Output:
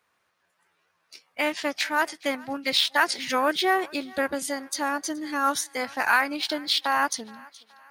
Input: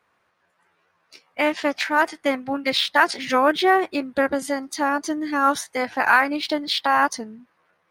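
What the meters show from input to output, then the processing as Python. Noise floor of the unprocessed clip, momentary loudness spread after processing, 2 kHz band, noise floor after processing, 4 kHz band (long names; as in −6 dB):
−69 dBFS, 8 LU, −4.0 dB, −72 dBFS, 0.0 dB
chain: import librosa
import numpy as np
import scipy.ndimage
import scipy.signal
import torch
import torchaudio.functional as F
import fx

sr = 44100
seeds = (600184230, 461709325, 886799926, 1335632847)

p1 = fx.high_shelf(x, sr, hz=3000.0, db=10.5)
p2 = p1 + fx.echo_thinned(p1, sr, ms=422, feedback_pct=52, hz=550.0, wet_db=-22.5, dry=0)
y = p2 * 10.0 ** (-6.5 / 20.0)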